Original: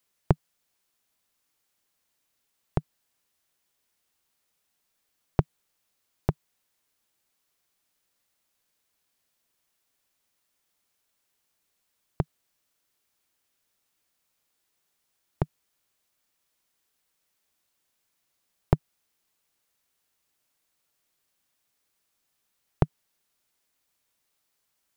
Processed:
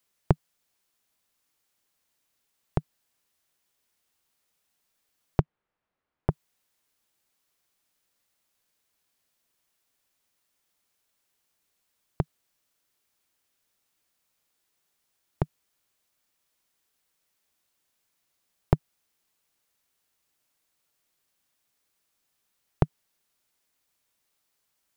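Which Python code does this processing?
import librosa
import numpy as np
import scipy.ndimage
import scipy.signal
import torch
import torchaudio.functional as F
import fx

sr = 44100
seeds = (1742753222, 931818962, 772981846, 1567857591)

y = fx.lowpass(x, sr, hz=1700.0, slope=12, at=(5.41, 6.3))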